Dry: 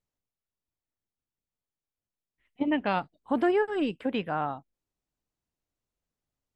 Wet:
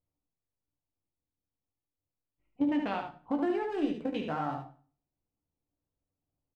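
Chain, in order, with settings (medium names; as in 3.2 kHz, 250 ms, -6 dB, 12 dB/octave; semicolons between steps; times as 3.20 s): local Wiener filter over 25 samples; compression, threshold -31 dBFS, peak gain reduction 10.5 dB; doubling 14 ms -11 dB; delay 74 ms -6 dB; on a send at -4.5 dB: reverberation RT60 0.40 s, pre-delay 5 ms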